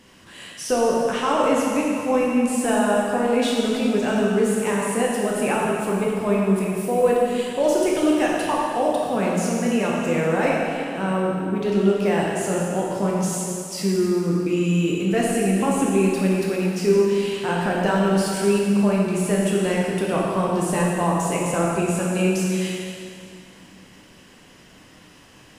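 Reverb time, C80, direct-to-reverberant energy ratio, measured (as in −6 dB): 2.5 s, 0.0 dB, −4.5 dB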